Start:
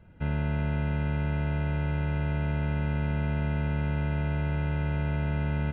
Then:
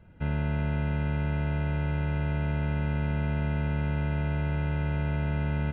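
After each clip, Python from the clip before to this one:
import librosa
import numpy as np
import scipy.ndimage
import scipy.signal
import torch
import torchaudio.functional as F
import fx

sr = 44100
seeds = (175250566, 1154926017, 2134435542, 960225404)

y = x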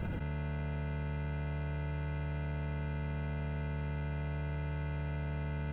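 y = 10.0 ** (-20.0 / 20.0) * np.tanh(x / 10.0 ** (-20.0 / 20.0))
y = fx.env_flatten(y, sr, amount_pct=100)
y = y * 10.0 ** (-8.0 / 20.0)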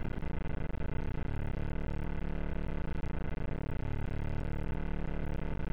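y = fx.octave_divider(x, sr, octaves=2, level_db=3.0)
y = np.maximum(y, 0.0)
y = y * 10.0 ** (1.0 / 20.0)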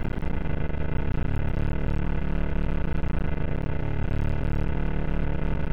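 y = x + 10.0 ** (-10.0 / 20.0) * np.pad(x, (int(259 * sr / 1000.0), 0))[:len(x)]
y = y * 10.0 ** (8.5 / 20.0)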